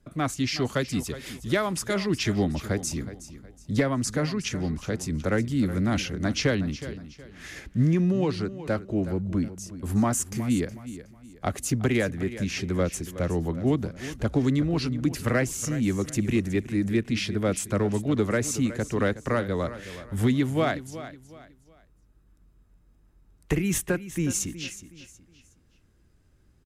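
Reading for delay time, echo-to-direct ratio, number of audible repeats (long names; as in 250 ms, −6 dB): 368 ms, −13.5 dB, 3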